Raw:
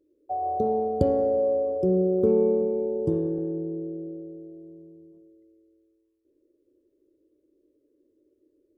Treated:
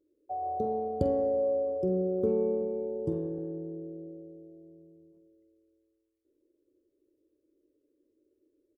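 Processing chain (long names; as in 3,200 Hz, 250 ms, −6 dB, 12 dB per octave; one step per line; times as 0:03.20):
double-tracking delay 47 ms −13 dB
level −6 dB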